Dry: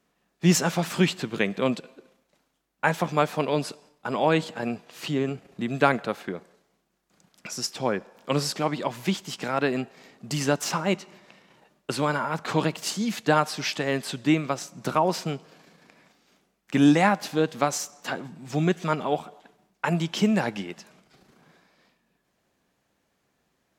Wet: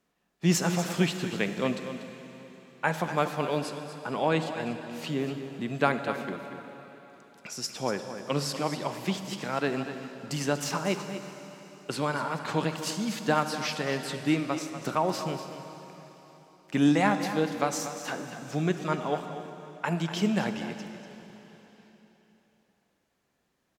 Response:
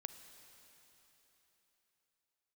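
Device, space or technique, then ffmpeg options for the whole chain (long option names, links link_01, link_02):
cave: -filter_complex "[0:a]aecho=1:1:241:0.282[link_01];[1:a]atrim=start_sample=2205[link_02];[link_01][link_02]afir=irnorm=-1:irlink=0"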